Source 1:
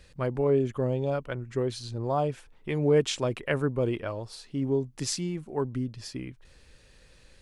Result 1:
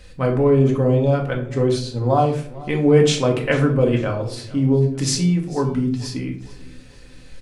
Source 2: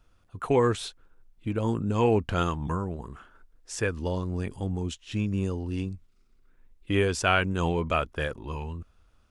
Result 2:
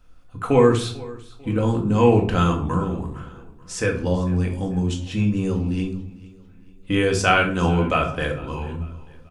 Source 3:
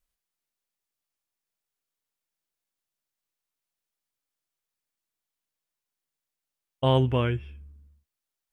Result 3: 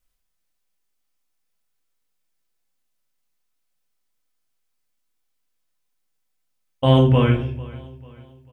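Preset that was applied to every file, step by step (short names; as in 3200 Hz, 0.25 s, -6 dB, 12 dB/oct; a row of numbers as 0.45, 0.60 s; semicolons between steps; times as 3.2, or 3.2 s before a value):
feedback echo 0.445 s, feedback 41%, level -20.5 dB; shoebox room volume 520 m³, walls furnished, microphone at 2 m; normalise peaks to -3 dBFS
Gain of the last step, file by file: +6.5, +3.0, +3.5 dB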